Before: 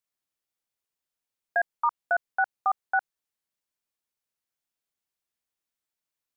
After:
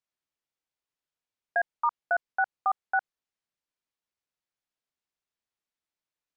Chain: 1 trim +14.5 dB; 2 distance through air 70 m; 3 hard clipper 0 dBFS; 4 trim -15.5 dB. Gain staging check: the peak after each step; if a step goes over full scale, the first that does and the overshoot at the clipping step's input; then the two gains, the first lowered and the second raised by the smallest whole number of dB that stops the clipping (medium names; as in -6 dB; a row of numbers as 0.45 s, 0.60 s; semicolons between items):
-1.0 dBFS, -1.5 dBFS, -1.5 dBFS, -17.0 dBFS; nothing clips